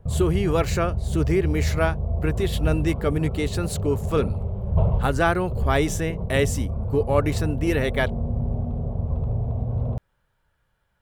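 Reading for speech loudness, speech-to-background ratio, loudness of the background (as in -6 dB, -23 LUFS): -25.0 LUFS, 2.5 dB, -27.5 LUFS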